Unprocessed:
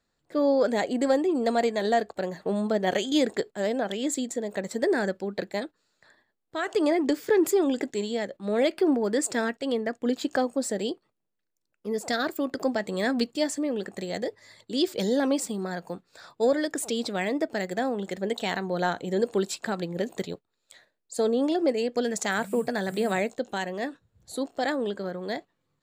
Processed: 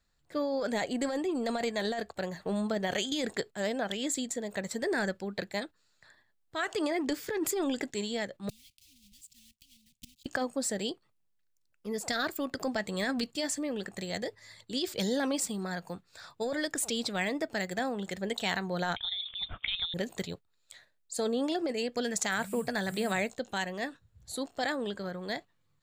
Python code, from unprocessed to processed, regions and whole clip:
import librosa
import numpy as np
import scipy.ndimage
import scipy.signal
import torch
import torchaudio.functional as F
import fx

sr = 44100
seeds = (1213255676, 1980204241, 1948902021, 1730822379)

y = fx.chain(x, sr, fx.block_float(bits=3),
    fx.cheby2_bandstop(low_hz=340.0, high_hz=1600.0, order=4, stop_db=40),
    fx.gate_flip(shuts_db=-29.0, range_db=-24), at=(8.49, 10.26))
y = fx.chain(y, sr, fx.highpass(hz=220.0, slope=24),
    fx.freq_invert(carrier_hz=3900), at=(18.96, 19.94))
y = fx.peak_eq(y, sr, hz=320.0, db=-10.0, octaves=2.7)
y = fx.over_compress(y, sr, threshold_db=-31.0, ratio=-1.0)
y = fx.low_shelf(y, sr, hz=220.0, db=7.5)